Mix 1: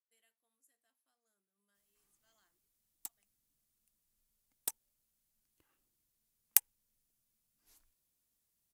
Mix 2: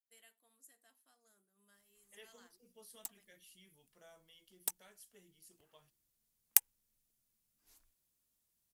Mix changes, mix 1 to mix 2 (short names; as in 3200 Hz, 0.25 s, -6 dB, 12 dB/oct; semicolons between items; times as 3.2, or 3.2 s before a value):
first voice +12.0 dB; second voice: unmuted